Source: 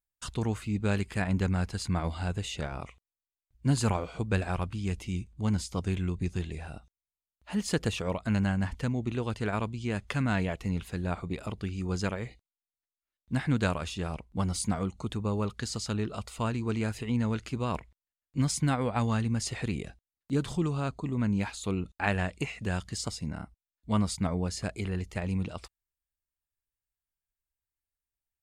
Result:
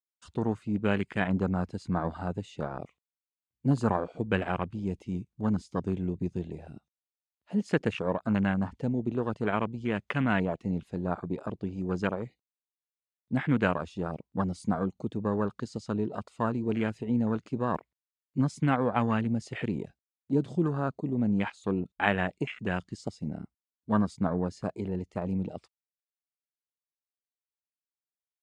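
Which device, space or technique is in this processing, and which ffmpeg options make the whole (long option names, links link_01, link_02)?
over-cleaned archive recording: -af "highpass=160,lowpass=7800,afwtdn=0.0126,volume=3.5dB"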